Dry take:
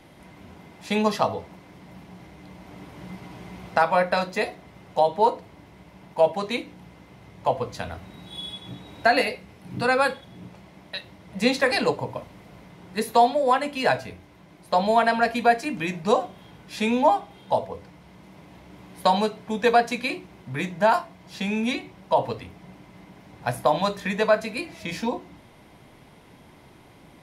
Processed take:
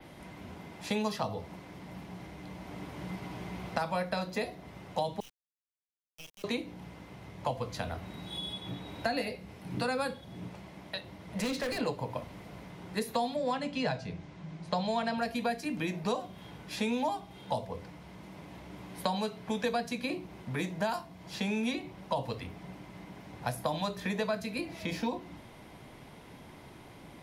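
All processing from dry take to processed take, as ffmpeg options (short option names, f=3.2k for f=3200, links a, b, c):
-filter_complex "[0:a]asettb=1/sr,asplit=3[a][b][c];[a]atrim=end=5.204[d];[b]atrim=start=5.2:end=6.44,asetpts=PTS-STARTPTS,afade=t=in:d=0.004:c=qsin,afade=t=out:st=1.236:d=0.004:c=qsin,asuperpass=centerf=2700:order=8:qfactor=2.1,acrusher=bits=5:dc=4:mix=0:aa=0.000001[e];[c]atrim=start=6.436[f];[d][e]acrossfade=d=0.004:c1=hsin:c2=qsin[g];[g][f]acrossfade=d=0.004:c1=qsin:c2=hsin,asettb=1/sr,asplit=3[h][i][j];[h]atrim=end=11.394[k];[i]atrim=start=11.39:end=11.81,asetpts=PTS-STARTPTS,afade=t=in:d=0.004:c=qsin,afade=t=out:st=0.416:d=0.004:c=qsin,equalizer=f=810:w=3.9:g=-9,acompressor=mode=upward:threshold=-26dB:ratio=2.5:attack=3.2:release=140:knee=2.83:detection=peak,volume=23.5dB,asoftclip=hard,volume=-23.5dB[l];[j]atrim=start=11.806[m];[k][l]acrossfade=d=0.004:c1=hsin:c2=qsin[n];[n][m]acrossfade=d=0.004:c1=qsin:c2=hsin,asettb=1/sr,asplit=3[o][p][q];[o]atrim=end=13.364[r];[p]atrim=start=13.36:end=15.18,asetpts=PTS-STARTPTS,afade=t=in:d=0.004:c=qsin,afade=t=out:st=1.816:d=0.004:c=qsin,lowpass=f=7.4k:w=0.5412,lowpass=f=7.4k:w=1.3066,equalizer=f=160:t=o:w=0.29:g=15[s];[q]atrim=start=15.176[t];[r][s]acrossfade=d=0.004:c1=hsin:c2=qsin[u];[u][t]acrossfade=d=0.004:c1=qsin:c2=hsin,acrossover=split=260|1100|3700[v][w][x][y];[v]acompressor=threshold=-37dB:ratio=4[z];[w]acompressor=threshold=-35dB:ratio=4[aa];[x]acompressor=threshold=-43dB:ratio=4[ab];[y]acompressor=threshold=-42dB:ratio=4[ac];[z][aa][ab][ac]amix=inputs=4:normalize=0,adynamicequalizer=threshold=0.00112:dfrequency=7700:dqfactor=1.1:tfrequency=7700:tqfactor=1.1:attack=5:release=100:ratio=0.375:range=3:mode=cutabove:tftype=bell"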